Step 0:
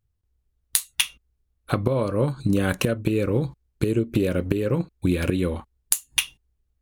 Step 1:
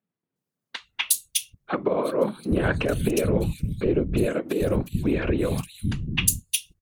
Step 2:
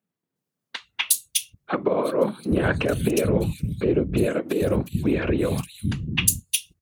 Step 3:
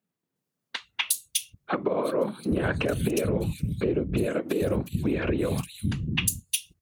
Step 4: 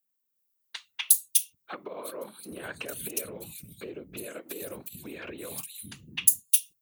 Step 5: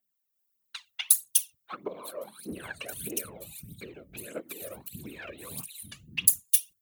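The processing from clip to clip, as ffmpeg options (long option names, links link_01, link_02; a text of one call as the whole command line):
ffmpeg -i in.wav -filter_complex "[0:a]afftfilt=real='hypot(re,im)*cos(2*PI*random(0))':imag='hypot(re,im)*sin(2*PI*random(1))':win_size=512:overlap=0.75,acrossover=split=200|3300[link_01][link_02][link_03];[link_03]adelay=360[link_04];[link_01]adelay=790[link_05];[link_05][link_02][link_04]amix=inputs=3:normalize=0,volume=7dB" out.wav
ffmpeg -i in.wav -af "highpass=63,volume=1.5dB" out.wav
ffmpeg -i in.wav -af "acompressor=threshold=-23dB:ratio=3" out.wav
ffmpeg -i in.wav -af "aemphasis=mode=production:type=riaa,volume=-10.5dB" out.wav
ffmpeg -i in.wav -af "aphaser=in_gain=1:out_gain=1:delay=1.8:decay=0.67:speed=1.6:type=triangular,volume=-3.5dB" out.wav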